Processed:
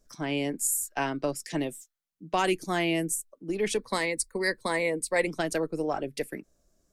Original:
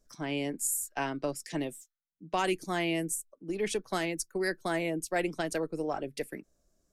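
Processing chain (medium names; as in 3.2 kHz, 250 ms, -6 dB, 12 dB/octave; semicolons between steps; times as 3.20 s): 3.77–5.27 s: rippled EQ curve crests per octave 0.96, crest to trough 11 dB; trim +3.5 dB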